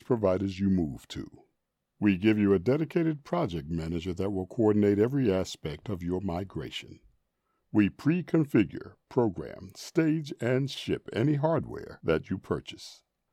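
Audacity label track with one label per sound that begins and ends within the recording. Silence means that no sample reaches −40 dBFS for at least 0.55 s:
2.010000	6.940000	sound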